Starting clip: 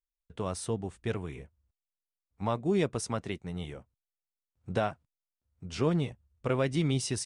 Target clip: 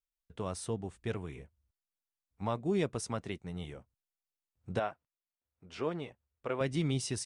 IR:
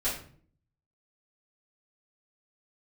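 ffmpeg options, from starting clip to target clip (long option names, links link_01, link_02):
-filter_complex "[0:a]asettb=1/sr,asplit=3[link_01][link_02][link_03];[link_01]atrim=end=4.794[link_04];[link_02]atrim=start=4.79:end=6.61,asetpts=PTS-STARTPTS,afade=type=in:duration=0.004:curve=qsin,afade=type=out:start_time=1.816:duration=0.004:curve=qsin,bass=frequency=250:gain=-13,treble=frequency=4000:gain=-10[link_05];[link_03]atrim=start=6.606[link_06];[link_04][link_05]acrossfade=duration=0.004:curve1=hsin:curve2=qsin[link_07];[link_07][link_06]acrossfade=duration=0.004:curve1=qsin:curve2=hsin,volume=-3.5dB"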